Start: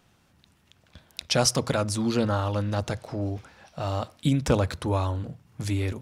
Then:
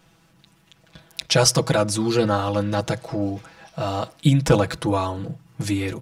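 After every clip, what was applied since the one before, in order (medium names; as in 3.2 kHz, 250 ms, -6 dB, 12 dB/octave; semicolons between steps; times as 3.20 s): comb 6.1 ms, depth 94%; trim +3 dB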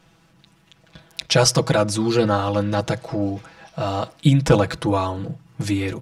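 treble shelf 10 kHz -8.5 dB; trim +1.5 dB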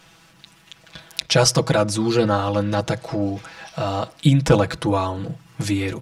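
tape noise reduction on one side only encoder only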